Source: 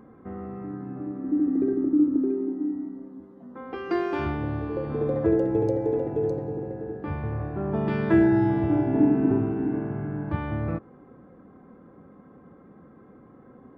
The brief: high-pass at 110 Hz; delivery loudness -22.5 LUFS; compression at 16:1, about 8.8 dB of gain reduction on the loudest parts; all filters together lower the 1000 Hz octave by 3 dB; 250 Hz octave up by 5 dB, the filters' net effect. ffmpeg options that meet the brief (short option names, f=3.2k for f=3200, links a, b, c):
-af "highpass=110,equalizer=f=250:t=o:g=7,equalizer=f=1k:t=o:g=-4.5,acompressor=threshold=-19dB:ratio=16,volume=3.5dB"